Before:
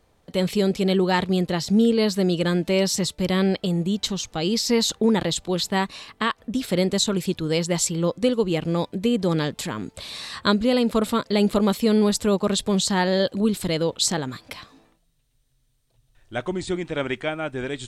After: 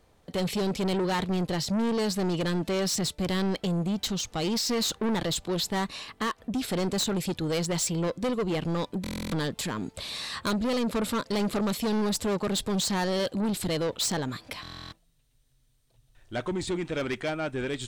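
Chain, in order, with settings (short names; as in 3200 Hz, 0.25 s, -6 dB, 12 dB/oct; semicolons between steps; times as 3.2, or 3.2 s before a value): soft clip -24 dBFS, distortion -8 dB; stuck buffer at 9.02/14.62, samples 1024, times 12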